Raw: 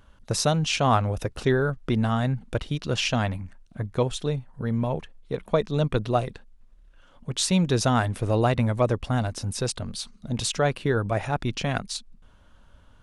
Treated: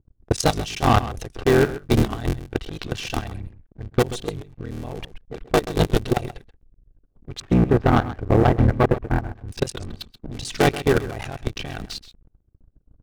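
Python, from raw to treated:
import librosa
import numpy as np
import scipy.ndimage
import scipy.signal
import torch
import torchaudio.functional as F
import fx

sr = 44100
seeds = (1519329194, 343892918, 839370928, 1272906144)

y = fx.cycle_switch(x, sr, every=3, mode='muted')
y = fx.lowpass(y, sr, hz=1700.0, slope=24, at=(7.4, 9.47))
y = fx.env_lowpass(y, sr, base_hz=330.0, full_db=-23.5)
y = y + 0.34 * np.pad(y, (int(2.6 * sr / 1000.0), 0))[:len(y)]
y = fx.leveller(y, sr, passes=2)
y = fx.peak_eq(y, sr, hz=1000.0, db=-4.5, octaves=1.6)
y = fx.level_steps(y, sr, step_db=19)
y = 10.0 ** (-13.5 / 20.0) * np.tanh(y / 10.0 ** (-13.5 / 20.0))
y = y + 10.0 ** (-14.5 / 20.0) * np.pad(y, (int(131 * sr / 1000.0), 0))[:len(y)]
y = fx.record_warp(y, sr, rpm=78.0, depth_cents=100.0)
y = y * 10.0 ** (6.0 / 20.0)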